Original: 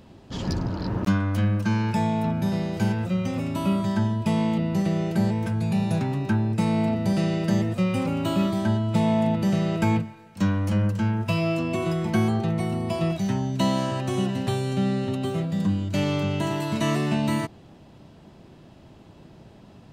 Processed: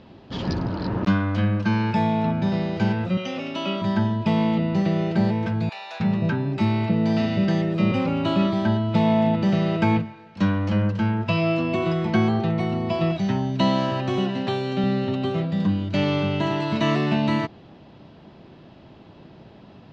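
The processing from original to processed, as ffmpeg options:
-filter_complex "[0:a]asettb=1/sr,asplit=3[s0][s1][s2];[s0]atrim=end=3.174[s3];[s1]atrim=start=3.17:end=3.82,asetpts=PTS-STARTPTS,afade=t=in:d=0.004:c=qsin,afade=t=out:st=0.646:d=0.004:c=qsin,highpass=320,equalizer=f=980:t=q:w=4:g=-5,equalizer=f=3000:t=q:w=4:g=8,equalizer=f=5900:t=q:w=4:g=7,lowpass=f=7600:w=0.5412,lowpass=f=7600:w=1.3066[s4];[s2]atrim=start=3.816[s5];[s3][s4]acrossfade=d=0.004:c1=hsin:c2=qsin[s6];[s6][s5]acrossfade=d=0.004:c1=qsin:c2=hsin,asettb=1/sr,asplit=3[s7][s8][s9];[s7]atrim=end=5.694[s10];[s8]atrim=start=5.69:end=7.92,asetpts=PTS-STARTPTS,afade=t=in:d=0.004:c=qsin,afade=t=out:st=2.226:d=0.004:c=qsin,acrossover=split=730[s11][s12];[s11]adelay=310[s13];[s13][s12]amix=inputs=2:normalize=0,atrim=end_sample=98343[s14];[s9]atrim=start=7.916[s15];[s10][s14]acrossfade=d=0.004:c1=hsin:c2=qsin[s16];[s16][s15]acrossfade=d=0.004:c1=qsin:c2=hsin,asettb=1/sr,asplit=3[s17][s18][s19];[s17]atrim=end=14.184[s20];[s18]atrim=start=14.18:end=14.84,asetpts=PTS-STARTPTS,afade=t=in:d=0.004:c=qsin,afade=t=out:st=0.656:d=0.004:c=qsin,highpass=160[s21];[s19]atrim=start=14.836[s22];[s20][s21]acrossfade=d=0.004:c1=hsin:c2=qsin[s23];[s23][s22]acrossfade=d=0.004:c1=qsin:c2=hsin,lowpass=f=4700:w=0.5412,lowpass=f=4700:w=1.3066,lowshelf=f=93:g=-8,volume=1.5"

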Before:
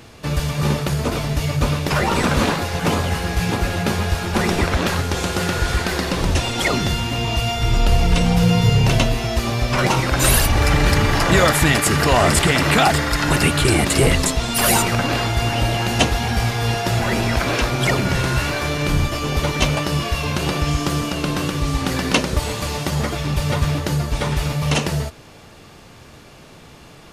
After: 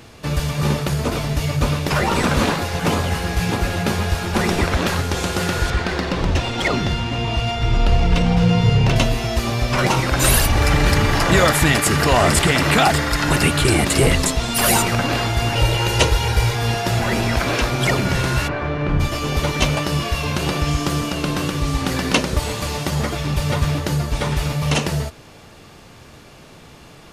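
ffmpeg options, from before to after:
-filter_complex "[0:a]asettb=1/sr,asplit=3[s0][s1][s2];[s0]atrim=end=5.704[s3];[s1]atrim=start=5.7:end=8.96,asetpts=PTS-STARTPTS,afade=t=in:d=0.004:c=qsin,afade=t=out:st=3.256:d=0.004:c=qsin,adynamicsmooth=sensitivity=1:basefreq=4300[s4];[s2]atrim=start=8.956[s5];[s3][s4]acrossfade=d=0.004:c1=hsin:c2=qsin[s6];[s6][s5]acrossfade=d=0.004:c1=qsin:c2=hsin,asettb=1/sr,asplit=3[s7][s8][s9];[s7]atrim=end=15.554[s10];[s8]atrim=start=15.55:end=16.55,asetpts=PTS-STARTPTS,afade=t=in:d=0.004:c=qsin,afade=t=out:st=0.996:d=0.004:c=qsin,aecho=1:1:2.1:0.75,atrim=end_sample=44100[s11];[s9]atrim=start=16.546[s12];[s10][s11]acrossfade=d=0.004:c1=hsin:c2=qsin[s13];[s13][s12]acrossfade=d=0.004:c1=qsin:c2=hsin,asplit=3[s14][s15][s16];[s14]afade=t=out:st=18.47:d=0.02[s17];[s15]lowpass=1800,afade=t=in:st=18.47:d=0.02,afade=t=out:st=18.99:d=0.02[s18];[s16]afade=t=in:st=18.99:d=0.02[s19];[s17][s18][s19]amix=inputs=3:normalize=0"

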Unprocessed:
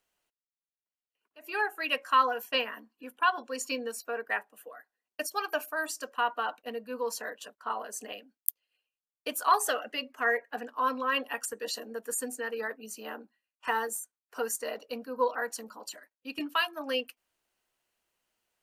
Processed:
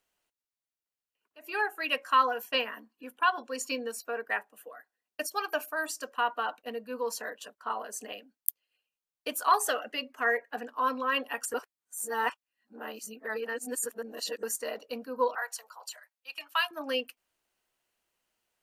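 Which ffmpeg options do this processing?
-filter_complex "[0:a]asettb=1/sr,asplit=3[s0][s1][s2];[s0]atrim=end=15.354[s3];[s1]atrim=start=15.35:end=16.71,asetpts=PTS-STARTPTS,afade=t=in:d=0.004:c=qsin,afade=t=out:st=1.356:d=0.004:c=qsin,highpass=f=700:w=0.5412,highpass=f=700:w=1.3066[s4];[s2]atrim=start=16.706[s5];[s3][s4]acrossfade=d=0.004:c1=hsin:c2=qsin[s6];[s6][s5]acrossfade=d=0.004:c1=qsin:c2=hsin,asplit=3[s7][s8][s9];[s7]atrim=end=11.542[s10];[s8]atrim=start=11.538:end=14.432,asetpts=PTS-STARTPTS,areverse[s11];[s9]atrim=start=14.428[s12];[s10][s11]acrossfade=d=0.004:c1=hsin:c2=hsin[s13];[s13][s12]acrossfade=d=0.004:c1=hsin:c2=hsin"

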